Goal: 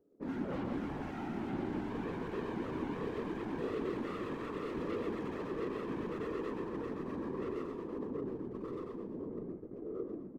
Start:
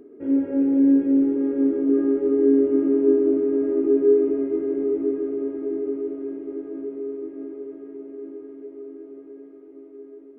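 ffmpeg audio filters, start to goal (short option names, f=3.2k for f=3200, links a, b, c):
-filter_complex "[0:a]lowpass=1.4k,equalizer=f=180:w=2.1:g=-12.5,asplit=2[a][b];[b]aecho=0:1:330|544.5|683.9|774.6|833.5:0.631|0.398|0.251|0.158|0.1[c];[a][c]amix=inputs=2:normalize=0,alimiter=limit=-20dB:level=0:latency=1:release=129,asoftclip=type=hard:threshold=-34dB,flanger=delay=6.3:depth=5.6:regen=21:speed=0.23:shape=sinusoidal,asoftclip=type=tanh:threshold=-36dB,afftfilt=real='hypot(re,im)*cos(2*PI*random(0))':imag='hypot(re,im)*sin(2*PI*random(1))':win_size=512:overlap=0.75,asplit=2[d][e];[e]asplit=6[f][g][h][i][j][k];[f]adelay=116,afreqshift=-63,volume=-7dB[l];[g]adelay=232,afreqshift=-126,volume=-12.8dB[m];[h]adelay=348,afreqshift=-189,volume=-18.7dB[n];[i]adelay=464,afreqshift=-252,volume=-24.5dB[o];[j]adelay=580,afreqshift=-315,volume=-30.4dB[p];[k]adelay=696,afreqshift=-378,volume=-36.2dB[q];[l][m][n][o][p][q]amix=inputs=6:normalize=0[r];[d][r]amix=inputs=2:normalize=0,agate=range=-19dB:threshold=-53dB:ratio=16:detection=peak,volume=7.5dB"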